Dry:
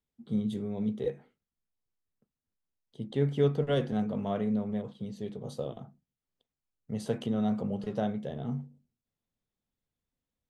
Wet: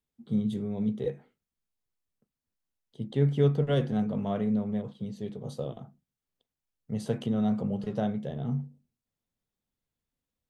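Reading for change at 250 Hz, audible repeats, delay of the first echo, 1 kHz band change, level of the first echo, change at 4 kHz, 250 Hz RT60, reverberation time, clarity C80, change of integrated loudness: +2.5 dB, no echo audible, no echo audible, 0.0 dB, no echo audible, 0.0 dB, no reverb audible, no reverb audible, no reverb audible, +2.0 dB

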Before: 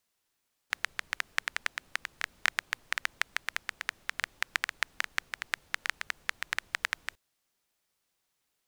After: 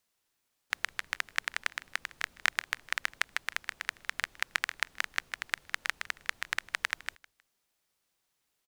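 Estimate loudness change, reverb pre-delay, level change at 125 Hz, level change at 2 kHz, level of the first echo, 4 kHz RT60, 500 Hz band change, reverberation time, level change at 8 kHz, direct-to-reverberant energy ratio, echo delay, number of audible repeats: 0.0 dB, no reverb audible, can't be measured, 0.0 dB, −21.0 dB, no reverb audible, 0.0 dB, no reverb audible, 0.0 dB, no reverb audible, 157 ms, 2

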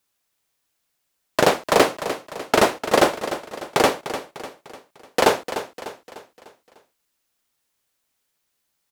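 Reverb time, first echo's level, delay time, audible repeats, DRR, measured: no reverb audible, −11.5 dB, 299 ms, 4, no reverb audible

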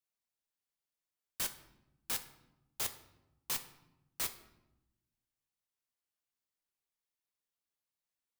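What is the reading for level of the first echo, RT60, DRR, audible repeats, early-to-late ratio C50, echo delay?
no echo audible, 0.95 s, 7.0 dB, no echo audible, 12.5 dB, no echo audible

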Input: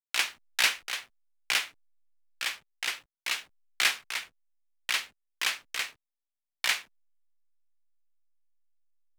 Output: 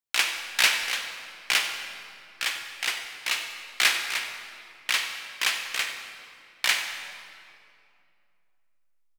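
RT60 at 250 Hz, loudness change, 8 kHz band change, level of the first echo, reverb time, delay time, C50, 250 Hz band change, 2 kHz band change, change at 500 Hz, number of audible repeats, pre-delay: 3.0 s, +4.0 dB, +4.5 dB, −13.5 dB, 2.5 s, 94 ms, 5.5 dB, +5.0 dB, +4.5 dB, +5.0 dB, 1, 38 ms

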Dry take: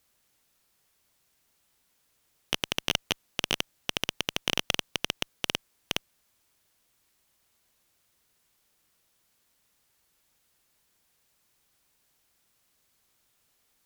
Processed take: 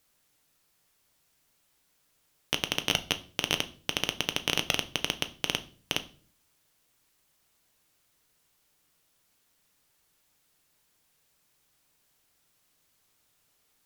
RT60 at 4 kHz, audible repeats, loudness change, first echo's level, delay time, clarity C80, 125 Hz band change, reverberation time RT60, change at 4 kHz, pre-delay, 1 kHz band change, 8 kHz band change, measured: 0.40 s, no echo audible, +0.5 dB, no echo audible, no echo audible, 22.5 dB, +1.5 dB, 0.45 s, +0.5 dB, 6 ms, +0.5 dB, +0.5 dB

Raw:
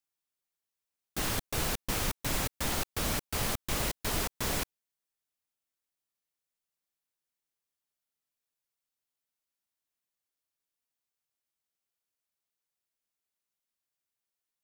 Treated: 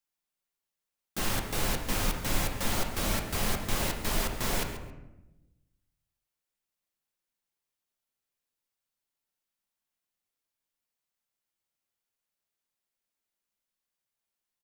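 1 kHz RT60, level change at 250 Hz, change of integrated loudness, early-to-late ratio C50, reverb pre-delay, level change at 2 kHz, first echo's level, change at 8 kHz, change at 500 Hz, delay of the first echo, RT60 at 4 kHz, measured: 0.90 s, +3.0 dB, +1.5 dB, 5.5 dB, 4 ms, +2.0 dB, −14.0 dB, +0.5 dB, +2.0 dB, 135 ms, 0.60 s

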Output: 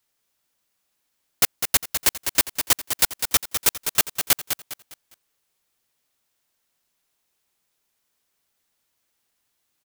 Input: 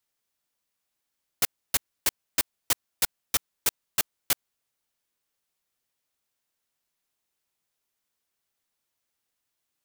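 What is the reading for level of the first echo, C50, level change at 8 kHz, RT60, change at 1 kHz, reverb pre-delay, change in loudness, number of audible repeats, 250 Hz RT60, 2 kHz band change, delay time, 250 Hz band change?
−7.5 dB, no reverb audible, +7.5 dB, no reverb audible, +7.5 dB, no reverb audible, +7.0 dB, 3, no reverb audible, +7.5 dB, 203 ms, +7.5 dB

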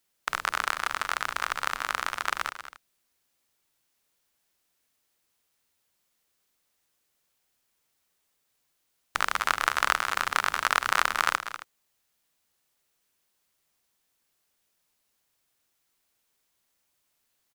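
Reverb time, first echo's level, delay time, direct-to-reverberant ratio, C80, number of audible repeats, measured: no reverb audible, −12.5 dB, 193 ms, no reverb audible, no reverb audible, 2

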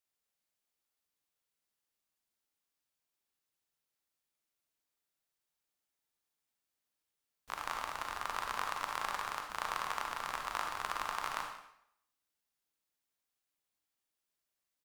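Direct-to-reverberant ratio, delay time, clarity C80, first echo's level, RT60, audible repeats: 2.5 dB, 182 ms, 7.0 dB, −18.0 dB, 0.75 s, 1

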